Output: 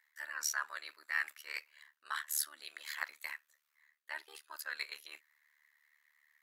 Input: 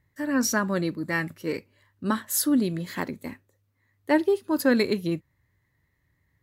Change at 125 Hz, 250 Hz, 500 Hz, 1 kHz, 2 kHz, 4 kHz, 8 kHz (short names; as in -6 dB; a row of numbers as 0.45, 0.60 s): under -40 dB, under -40 dB, -34.5 dB, -13.5 dB, -7.0 dB, -8.0 dB, -8.5 dB